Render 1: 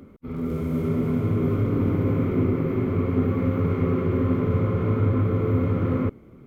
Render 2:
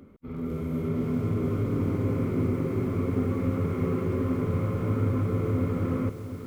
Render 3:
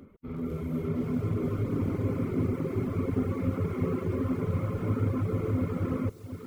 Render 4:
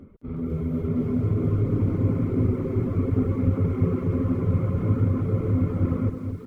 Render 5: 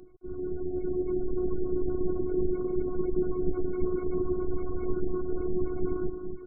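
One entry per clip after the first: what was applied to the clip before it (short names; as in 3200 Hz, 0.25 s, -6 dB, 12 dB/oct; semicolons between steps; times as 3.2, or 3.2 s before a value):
lo-fi delay 0.71 s, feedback 55%, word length 7-bit, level -11 dB; gain -4.5 dB
reverb removal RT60 0.88 s
tilt -2 dB/oct; on a send: echo 0.215 s -7.5 dB
spectral gate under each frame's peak -30 dB strong; robotiser 364 Hz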